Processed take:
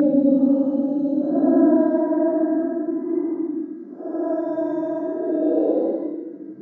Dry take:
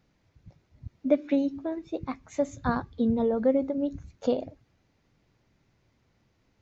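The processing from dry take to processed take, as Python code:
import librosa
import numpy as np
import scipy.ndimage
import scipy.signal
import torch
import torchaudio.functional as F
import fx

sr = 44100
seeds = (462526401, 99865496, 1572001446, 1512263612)

y = scipy.signal.sosfilt(scipy.signal.cheby1(6, 3, 160.0, 'highpass', fs=sr, output='sos'), x)
y = fx.tilt_shelf(y, sr, db=7.5, hz=680.0)
y = y + 10.0 ** (-4.0 / 20.0) * np.pad(y, (int(194 * sr / 1000.0), 0))[:len(y)]
y = fx.paulstretch(y, sr, seeds[0], factor=14.0, window_s=0.05, from_s=1.55)
y = fx.high_shelf_res(y, sr, hz=2000.0, db=-8.0, q=3.0)
y = y * librosa.db_to_amplitude(8.5)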